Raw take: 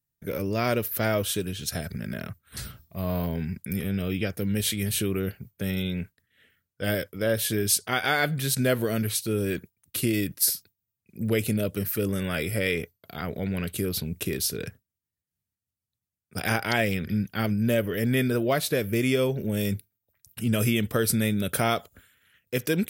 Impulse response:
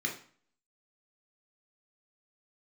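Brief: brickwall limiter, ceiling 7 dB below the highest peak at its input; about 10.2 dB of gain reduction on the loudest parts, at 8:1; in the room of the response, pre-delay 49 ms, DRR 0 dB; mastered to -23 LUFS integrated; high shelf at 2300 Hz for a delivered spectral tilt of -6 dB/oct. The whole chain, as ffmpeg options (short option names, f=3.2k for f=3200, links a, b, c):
-filter_complex "[0:a]highshelf=f=2.3k:g=-7.5,acompressor=threshold=-31dB:ratio=8,alimiter=level_in=2.5dB:limit=-24dB:level=0:latency=1,volume=-2.5dB,asplit=2[a][b];[1:a]atrim=start_sample=2205,adelay=49[c];[b][c]afir=irnorm=-1:irlink=0,volume=-5dB[d];[a][d]amix=inputs=2:normalize=0,volume=11.5dB"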